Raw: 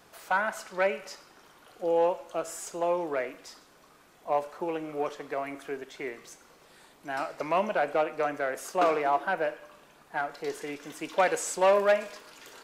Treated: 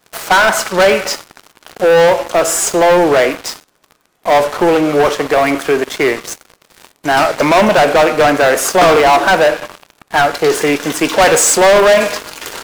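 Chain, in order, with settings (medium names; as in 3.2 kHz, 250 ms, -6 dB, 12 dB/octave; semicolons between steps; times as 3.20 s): waveshaping leveller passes 5; trim +7 dB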